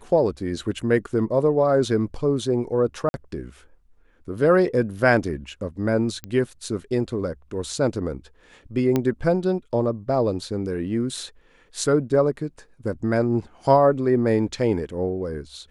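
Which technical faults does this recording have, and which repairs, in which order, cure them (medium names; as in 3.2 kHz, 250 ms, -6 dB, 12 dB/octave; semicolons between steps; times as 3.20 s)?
3.09–3.14 s: dropout 51 ms
6.24 s: pop -17 dBFS
8.96 s: pop -9 dBFS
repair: de-click; interpolate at 3.09 s, 51 ms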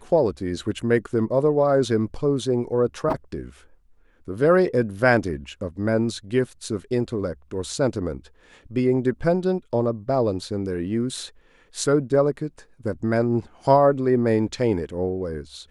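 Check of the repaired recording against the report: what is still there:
nothing left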